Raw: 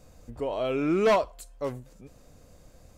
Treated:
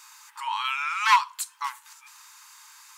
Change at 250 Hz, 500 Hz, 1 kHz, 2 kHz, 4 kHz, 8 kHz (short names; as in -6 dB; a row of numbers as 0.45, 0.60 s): under -40 dB, under -40 dB, +8.5 dB, +10.0 dB, +10.5 dB, +13.0 dB